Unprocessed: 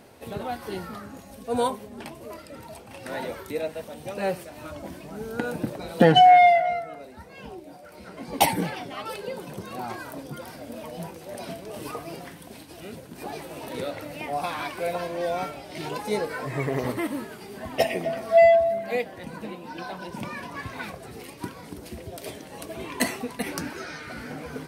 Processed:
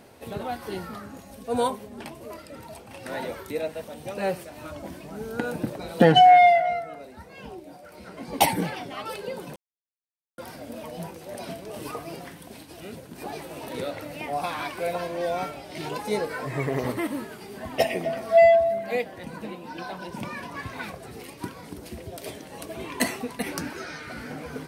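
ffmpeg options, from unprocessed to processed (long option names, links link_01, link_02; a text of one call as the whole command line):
ffmpeg -i in.wav -filter_complex "[0:a]asplit=3[link_01][link_02][link_03];[link_01]atrim=end=9.56,asetpts=PTS-STARTPTS,afade=type=out:start_time=9.556:duration=0.004:curve=hsin[link_04];[link_02]atrim=start=9.56:end=10.38,asetpts=PTS-STARTPTS,volume=0[link_05];[link_03]atrim=start=10.38,asetpts=PTS-STARTPTS,afade=type=in:duration=0.004:curve=hsin[link_06];[link_04][link_05][link_06]concat=n=3:v=0:a=1" out.wav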